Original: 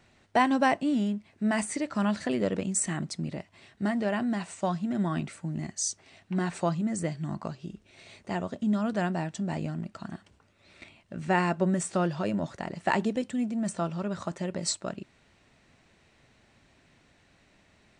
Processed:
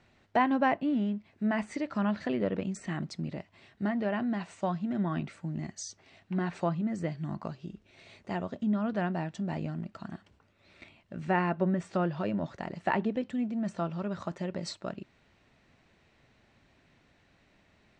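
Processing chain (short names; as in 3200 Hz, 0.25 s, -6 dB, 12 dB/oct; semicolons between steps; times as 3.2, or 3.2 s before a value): treble ducked by the level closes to 2900 Hz, closed at -23 dBFS; air absorption 78 m; gain -2 dB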